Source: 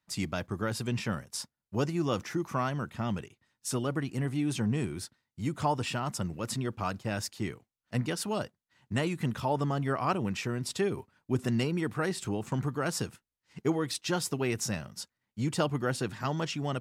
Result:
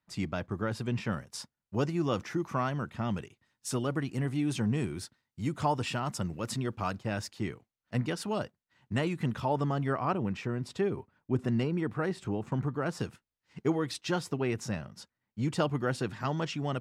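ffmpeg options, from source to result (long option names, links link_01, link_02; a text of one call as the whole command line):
ffmpeg -i in.wav -af "asetnsamples=nb_out_samples=441:pad=0,asendcmd='1.07 lowpass f 4600;3.11 lowpass f 8100;6.96 lowpass f 4000;9.97 lowpass f 1600;13 lowpass f 4100;14.2 lowpass f 2200;15.43 lowpass f 4300',lowpass=frequency=2400:poles=1" out.wav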